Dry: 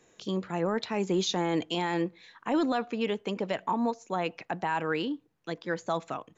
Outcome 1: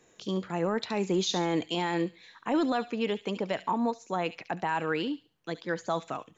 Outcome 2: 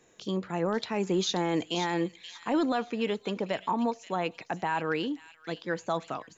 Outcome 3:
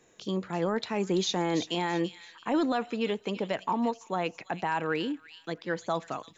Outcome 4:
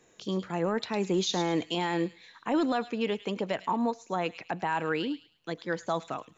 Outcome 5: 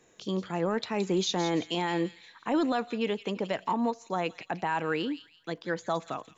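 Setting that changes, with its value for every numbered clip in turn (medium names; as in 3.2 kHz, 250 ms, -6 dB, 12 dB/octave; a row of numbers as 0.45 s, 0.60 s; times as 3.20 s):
feedback echo behind a high-pass, time: 70 ms, 531 ms, 334 ms, 106 ms, 169 ms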